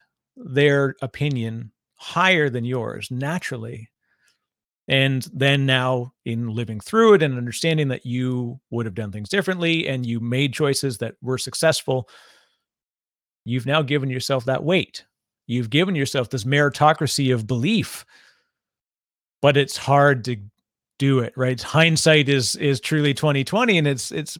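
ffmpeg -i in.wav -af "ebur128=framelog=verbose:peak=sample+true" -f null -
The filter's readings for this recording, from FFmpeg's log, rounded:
Integrated loudness:
  I:         -20.6 LUFS
  Threshold: -31.3 LUFS
Loudness range:
  LRA:         5.3 LU
  Threshold: -41.8 LUFS
  LRA low:   -24.4 LUFS
  LRA high:  -19.0 LUFS
Sample peak:
  Peak:       -1.2 dBFS
True peak:
  Peak:       -1.1 dBFS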